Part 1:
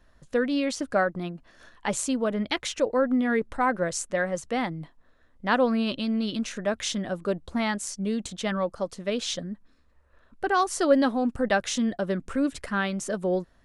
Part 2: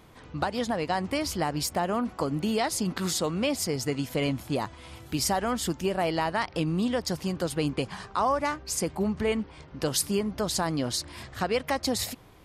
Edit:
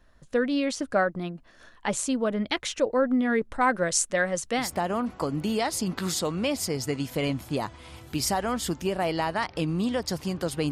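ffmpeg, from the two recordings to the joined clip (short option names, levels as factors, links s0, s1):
-filter_complex "[0:a]asettb=1/sr,asplit=3[s0][s1][s2];[s0]atrim=end=3.614[s3];[s1]atrim=start=3.61:end=4.72,asetpts=PTS-STARTPTS,afade=t=in:d=0.004:c=qsin,afade=t=out:st=1.106:d=0.004:c=qsin,highshelf=f=2100:g=8[s4];[s2]atrim=start=4.716[s5];[s3][s4]acrossfade=d=0.004:c1=hsin:c2=qsin[s6];[s6][s5]acrossfade=d=0.004:c1=qsin:c2=hsin,apad=whole_dur=10.71,atrim=end=10.71,atrim=end=4.72,asetpts=PTS-STARTPTS[s7];[1:a]atrim=start=1.55:end=7.7,asetpts=PTS-STARTPTS[s8];[s7][s8]acrossfade=d=0.16:c1=tri:c2=tri"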